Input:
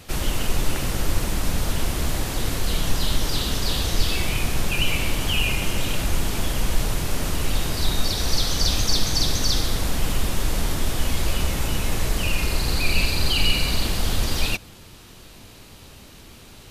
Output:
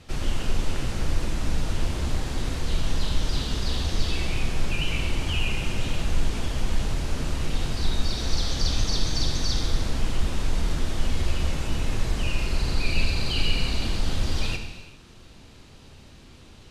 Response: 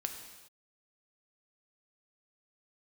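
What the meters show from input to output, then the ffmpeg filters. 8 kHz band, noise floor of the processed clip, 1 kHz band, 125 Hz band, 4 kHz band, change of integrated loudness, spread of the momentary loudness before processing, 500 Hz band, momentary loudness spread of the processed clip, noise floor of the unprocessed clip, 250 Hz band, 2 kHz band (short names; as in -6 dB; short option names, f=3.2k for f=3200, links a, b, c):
-9.0 dB, -48 dBFS, -5.5 dB, -2.0 dB, -6.0 dB, -4.5 dB, 5 LU, -4.5 dB, 4 LU, -45 dBFS, -3.0 dB, -5.5 dB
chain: -filter_complex "[0:a]lowpass=7.1k,lowshelf=f=340:g=4[a];[1:a]atrim=start_sample=2205[b];[a][b]afir=irnorm=-1:irlink=0,volume=-6dB"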